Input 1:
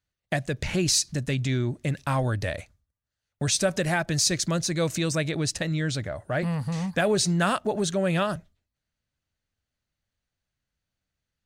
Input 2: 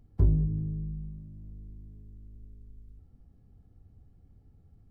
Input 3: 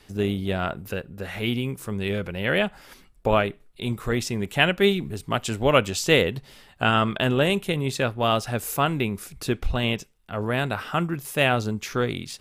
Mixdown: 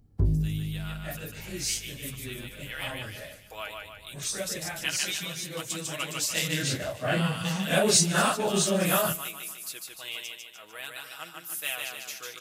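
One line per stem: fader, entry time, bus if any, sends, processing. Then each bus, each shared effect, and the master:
6.12 s -12.5 dB -> 6.7 s 0 dB, 0.75 s, no send, echo send -21.5 dB, phase scrambler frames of 0.1 s; high shelf 6100 Hz +11 dB
-0.5 dB, 0.00 s, no send, no echo send, tone controls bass +4 dB, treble +6 dB
-2.0 dB, 0.25 s, no send, echo send -3.5 dB, differentiator; comb 6.3 ms, depth 64%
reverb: off
echo: feedback echo 0.149 s, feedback 50%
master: low shelf 90 Hz -8.5 dB

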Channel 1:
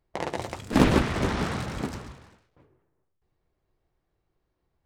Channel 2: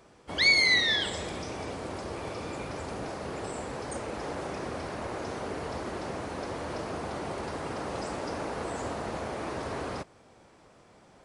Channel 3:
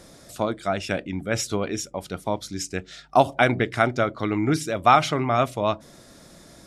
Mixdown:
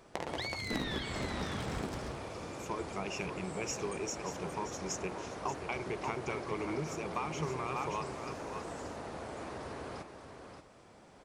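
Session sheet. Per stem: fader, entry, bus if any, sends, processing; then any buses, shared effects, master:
0.0 dB, 0.00 s, bus A, no send, no echo send, dry
-1.5 dB, 0.00 s, no bus, no send, echo send -7.5 dB, compressor, threshold -39 dBFS, peak gain reduction 19.5 dB
-11.5 dB, 2.30 s, bus A, no send, echo send -13.5 dB, ripple EQ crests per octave 0.75, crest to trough 17 dB
bus A: 0.0 dB, compressor 12:1, threshold -34 dBFS, peak gain reduction 21 dB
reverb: off
echo: echo 0.579 s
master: dry

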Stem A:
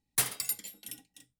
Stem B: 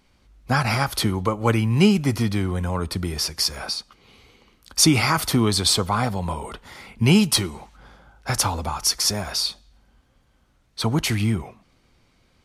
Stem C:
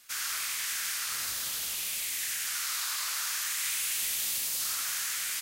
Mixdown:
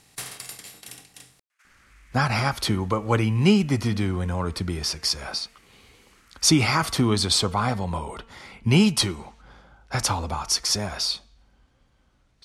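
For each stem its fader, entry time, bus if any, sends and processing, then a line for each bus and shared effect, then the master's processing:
-6.0 dB, 0.00 s, no send, per-bin compression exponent 0.4
-1.5 dB, 1.65 s, no send, de-hum 227.2 Hz, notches 13
-14.5 dB, 1.50 s, no send, HPF 550 Hz; resonant high shelf 2800 Hz -9.5 dB, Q 1.5; limiter -35 dBFS, peak gain reduction 9 dB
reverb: off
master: LPF 9100 Hz 12 dB/oct

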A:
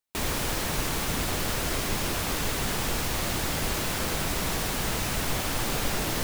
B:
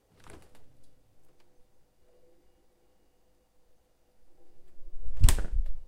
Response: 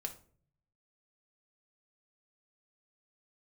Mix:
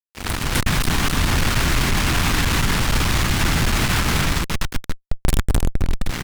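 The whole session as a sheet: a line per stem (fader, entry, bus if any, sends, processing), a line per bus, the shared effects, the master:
-6.0 dB, 0.00 s, no send, echo send -11 dB, LPF 1700 Hz 6 dB/oct; notches 50/100/150/200/250/300/350/400/450/500 Hz; limiter -27.5 dBFS, peak gain reduction 10 dB
+1.5 dB, 0.00 s, no send, echo send -8.5 dB, bell 6500 Hz -6 dB 0.61 oct; sample leveller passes 5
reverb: off
echo: echo 0.258 s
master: bell 540 Hz -15 dB 1.4 oct; AGC gain up to 10 dB; fuzz box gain 35 dB, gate -41 dBFS

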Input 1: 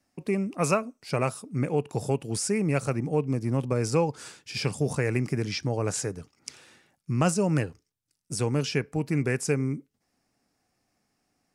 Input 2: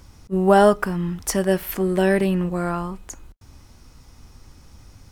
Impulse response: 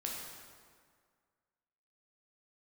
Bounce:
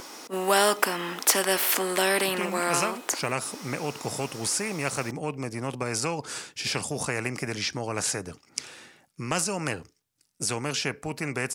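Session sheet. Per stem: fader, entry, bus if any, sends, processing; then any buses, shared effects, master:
-6.5 dB, 2.10 s, no send, dry
-0.5 dB, 0.00 s, no send, HPF 310 Hz 24 dB/oct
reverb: off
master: low shelf 140 Hz -7.5 dB; spectral compressor 2:1

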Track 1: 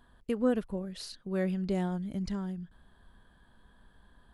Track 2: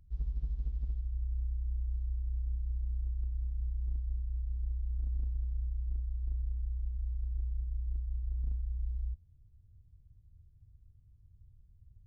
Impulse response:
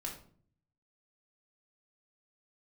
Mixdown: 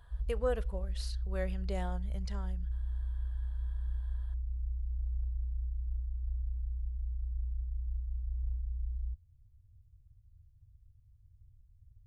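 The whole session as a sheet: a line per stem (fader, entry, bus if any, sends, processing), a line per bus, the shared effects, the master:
-1.0 dB, 0.00 s, send -19 dB, vocal rider 2 s
-1.0 dB, 0.00 s, no send, dry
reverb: on, RT60 0.50 s, pre-delay 3 ms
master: EQ curve 120 Hz 0 dB, 280 Hz -23 dB, 470 Hz -3 dB

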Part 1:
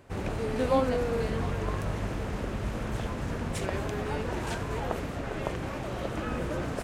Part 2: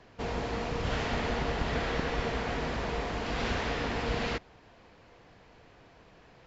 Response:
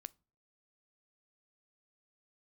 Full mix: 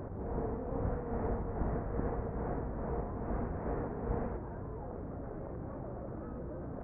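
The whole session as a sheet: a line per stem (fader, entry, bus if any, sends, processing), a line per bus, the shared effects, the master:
-12.5 dB, 0.00 s, no send, limiter -23.5 dBFS, peak gain reduction 10 dB; fast leveller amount 100%
-1.5 dB, 0.00 s, no send, tremolo 2.4 Hz, depth 53%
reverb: off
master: Gaussian blur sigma 7.5 samples

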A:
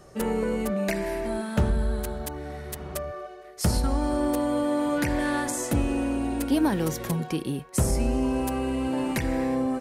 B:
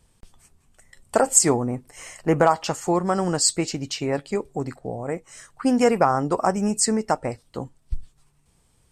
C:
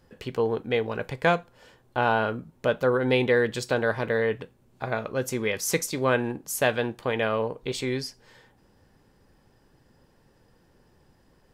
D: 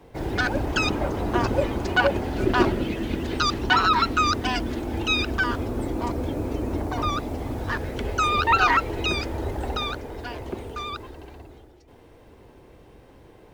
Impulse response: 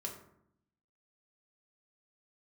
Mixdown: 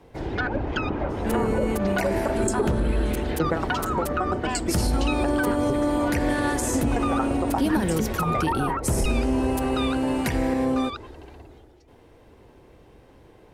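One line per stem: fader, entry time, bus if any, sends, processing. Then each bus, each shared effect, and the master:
+2.5 dB, 1.10 s, no send, dry
+0.5 dB, 1.10 s, send -11 dB, band shelf 7500 Hz -9 dB; phaser 0.44 Hz, delay 3.6 ms, feedback 56%; dB-ramp tremolo decaying 8.7 Hz, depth 30 dB
-17.5 dB, 0.00 s, no send, LPF 6600 Hz
-1.5 dB, 0.00 s, no send, treble ducked by the level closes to 830 Hz, closed at -16.5 dBFS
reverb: on, RT60 0.75 s, pre-delay 3 ms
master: limiter -14 dBFS, peak gain reduction 10.5 dB

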